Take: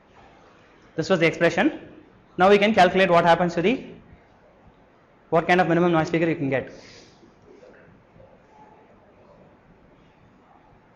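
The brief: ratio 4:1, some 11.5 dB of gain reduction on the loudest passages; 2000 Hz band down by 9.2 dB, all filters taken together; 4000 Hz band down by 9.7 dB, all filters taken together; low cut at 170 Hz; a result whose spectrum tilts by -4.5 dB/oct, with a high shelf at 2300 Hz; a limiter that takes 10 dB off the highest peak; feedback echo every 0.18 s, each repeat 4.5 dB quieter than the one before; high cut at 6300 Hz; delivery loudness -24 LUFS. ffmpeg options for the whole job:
-af "highpass=170,lowpass=6.3k,equalizer=f=2k:t=o:g=-9,highshelf=f=2.3k:g=-3,equalizer=f=4k:t=o:g=-6,acompressor=threshold=-27dB:ratio=4,alimiter=level_in=1.5dB:limit=-24dB:level=0:latency=1,volume=-1.5dB,aecho=1:1:180|360|540|720|900|1080|1260|1440|1620:0.596|0.357|0.214|0.129|0.0772|0.0463|0.0278|0.0167|0.01,volume=11dB"

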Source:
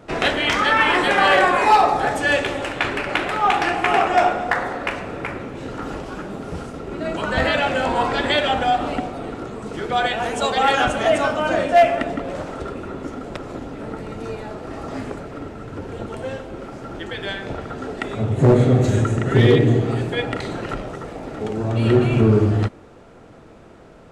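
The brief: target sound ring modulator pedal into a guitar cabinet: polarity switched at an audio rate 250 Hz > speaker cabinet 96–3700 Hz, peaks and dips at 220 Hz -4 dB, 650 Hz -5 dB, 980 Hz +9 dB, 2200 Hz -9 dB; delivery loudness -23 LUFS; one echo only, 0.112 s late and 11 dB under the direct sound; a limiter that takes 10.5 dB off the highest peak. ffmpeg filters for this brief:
-af "alimiter=limit=-17.5dB:level=0:latency=1,aecho=1:1:112:0.282,aeval=exprs='val(0)*sgn(sin(2*PI*250*n/s))':c=same,highpass=96,equalizer=f=220:t=q:w=4:g=-4,equalizer=f=650:t=q:w=4:g=-5,equalizer=f=980:t=q:w=4:g=9,equalizer=f=2.2k:t=q:w=4:g=-9,lowpass=f=3.7k:w=0.5412,lowpass=f=3.7k:w=1.3066,volume=2.5dB"

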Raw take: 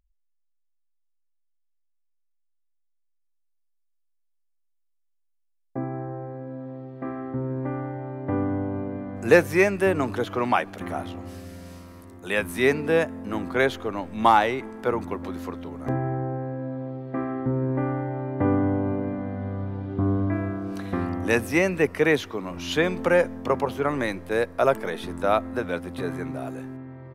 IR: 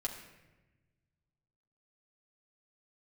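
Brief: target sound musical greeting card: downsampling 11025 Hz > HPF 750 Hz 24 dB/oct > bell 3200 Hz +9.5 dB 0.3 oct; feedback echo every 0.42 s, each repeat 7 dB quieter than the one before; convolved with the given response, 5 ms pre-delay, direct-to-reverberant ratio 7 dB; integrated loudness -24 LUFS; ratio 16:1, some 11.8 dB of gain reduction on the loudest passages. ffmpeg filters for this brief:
-filter_complex "[0:a]acompressor=threshold=-22dB:ratio=16,aecho=1:1:420|840|1260|1680|2100:0.447|0.201|0.0905|0.0407|0.0183,asplit=2[a][b];[1:a]atrim=start_sample=2205,adelay=5[c];[b][c]afir=irnorm=-1:irlink=0,volume=-8dB[d];[a][d]amix=inputs=2:normalize=0,aresample=11025,aresample=44100,highpass=f=750:w=0.5412,highpass=f=750:w=1.3066,equalizer=f=3.2k:t=o:w=0.3:g=9.5,volume=9.5dB"

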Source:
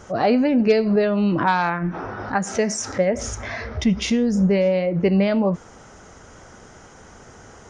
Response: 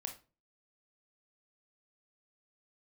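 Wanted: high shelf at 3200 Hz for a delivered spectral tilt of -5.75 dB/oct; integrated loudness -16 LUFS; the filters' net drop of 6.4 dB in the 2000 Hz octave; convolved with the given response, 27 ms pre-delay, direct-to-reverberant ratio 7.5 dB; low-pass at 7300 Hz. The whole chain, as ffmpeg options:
-filter_complex "[0:a]lowpass=7.3k,equalizer=f=2k:t=o:g=-6.5,highshelf=f=3.2k:g=-6.5,asplit=2[a][b];[1:a]atrim=start_sample=2205,adelay=27[c];[b][c]afir=irnorm=-1:irlink=0,volume=-5.5dB[d];[a][d]amix=inputs=2:normalize=0,volume=4.5dB"

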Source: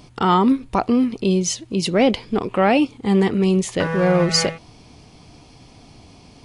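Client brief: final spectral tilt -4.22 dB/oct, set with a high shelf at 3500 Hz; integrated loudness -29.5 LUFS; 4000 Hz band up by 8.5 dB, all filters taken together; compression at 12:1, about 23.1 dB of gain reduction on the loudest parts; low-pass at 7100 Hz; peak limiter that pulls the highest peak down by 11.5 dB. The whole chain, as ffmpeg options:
-af "lowpass=7.1k,highshelf=f=3.5k:g=7.5,equalizer=f=4k:t=o:g=6,acompressor=threshold=-30dB:ratio=12,volume=9.5dB,alimiter=limit=-20dB:level=0:latency=1"

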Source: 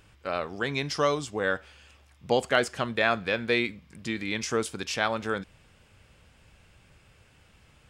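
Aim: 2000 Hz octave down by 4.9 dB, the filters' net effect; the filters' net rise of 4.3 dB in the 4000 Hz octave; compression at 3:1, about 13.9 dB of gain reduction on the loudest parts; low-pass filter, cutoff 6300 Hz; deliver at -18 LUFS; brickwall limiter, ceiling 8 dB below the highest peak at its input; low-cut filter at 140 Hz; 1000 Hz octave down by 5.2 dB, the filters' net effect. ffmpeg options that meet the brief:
-af "highpass=140,lowpass=6.3k,equalizer=f=1k:t=o:g=-6,equalizer=f=2k:t=o:g=-6.5,equalizer=f=4k:t=o:g=8.5,acompressor=threshold=-40dB:ratio=3,volume=26dB,alimiter=limit=-5.5dB:level=0:latency=1"

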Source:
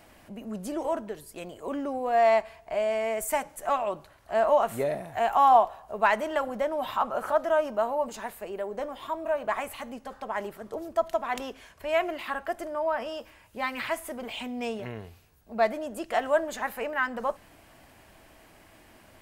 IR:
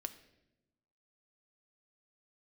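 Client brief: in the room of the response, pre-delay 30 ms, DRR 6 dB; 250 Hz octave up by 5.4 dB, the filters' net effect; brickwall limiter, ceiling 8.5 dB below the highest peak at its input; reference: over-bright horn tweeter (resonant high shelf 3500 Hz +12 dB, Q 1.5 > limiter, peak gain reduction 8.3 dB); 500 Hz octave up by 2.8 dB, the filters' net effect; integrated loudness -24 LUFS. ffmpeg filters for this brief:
-filter_complex "[0:a]equalizer=f=250:t=o:g=5.5,equalizer=f=500:t=o:g=3.5,alimiter=limit=-15dB:level=0:latency=1,asplit=2[a][b];[1:a]atrim=start_sample=2205,adelay=30[c];[b][c]afir=irnorm=-1:irlink=0,volume=-3.5dB[d];[a][d]amix=inputs=2:normalize=0,highshelf=f=3.5k:t=q:w=1.5:g=12,volume=4dB,alimiter=limit=-12.5dB:level=0:latency=1"

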